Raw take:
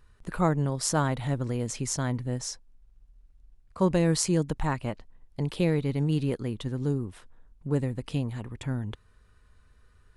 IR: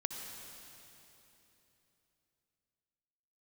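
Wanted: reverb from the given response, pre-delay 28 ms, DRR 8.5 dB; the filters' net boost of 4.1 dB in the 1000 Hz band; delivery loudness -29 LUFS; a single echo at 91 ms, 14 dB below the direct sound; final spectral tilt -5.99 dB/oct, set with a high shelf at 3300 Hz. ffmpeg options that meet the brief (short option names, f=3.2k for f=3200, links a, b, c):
-filter_complex "[0:a]equalizer=f=1k:t=o:g=5.5,highshelf=f=3.3k:g=-5.5,aecho=1:1:91:0.2,asplit=2[a][b];[1:a]atrim=start_sample=2205,adelay=28[c];[b][c]afir=irnorm=-1:irlink=0,volume=-9.5dB[d];[a][d]amix=inputs=2:normalize=0,volume=-1dB"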